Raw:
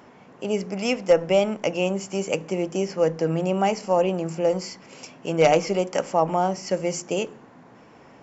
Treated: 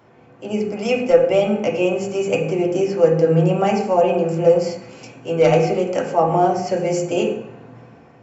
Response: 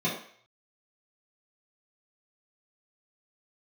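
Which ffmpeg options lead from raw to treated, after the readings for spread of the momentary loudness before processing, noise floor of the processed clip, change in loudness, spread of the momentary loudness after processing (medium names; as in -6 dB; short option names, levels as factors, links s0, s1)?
10 LU, -48 dBFS, +5.5 dB, 10 LU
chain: -filter_complex "[0:a]dynaudnorm=f=120:g=9:m=2.11,asplit=2[s0][s1];[1:a]atrim=start_sample=2205,asetrate=30429,aresample=44100[s2];[s1][s2]afir=irnorm=-1:irlink=0,volume=0.299[s3];[s0][s3]amix=inputs=2:normalize=0,volume=0.596"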